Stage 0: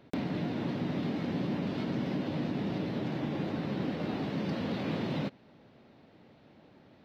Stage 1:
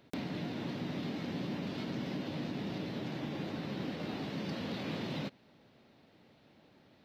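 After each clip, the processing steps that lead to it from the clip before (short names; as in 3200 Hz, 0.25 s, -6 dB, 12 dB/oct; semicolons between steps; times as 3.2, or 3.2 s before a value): high shelf 2700 Hz +9 dB; gain -5.5 dB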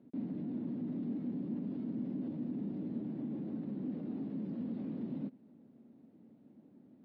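limiter -35.5 dBFS, peak gain reduction 11 dB; band-pass 240 Hz, Q 2.9; gain +9 dB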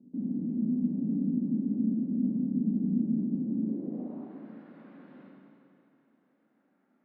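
band-pass sweep 220 Hz -> 1500 Hz, 3.47–4.37; Schroeder reverb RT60 2.6 s, combs from 32 ms, DRR -2 dB; gain +6.5 dB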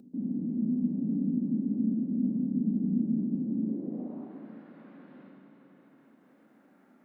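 upward compressor, threshold -50 dBFS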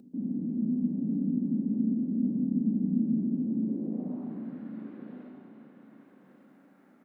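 feedback echo 1.142 s, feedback 16%, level -9.5 dB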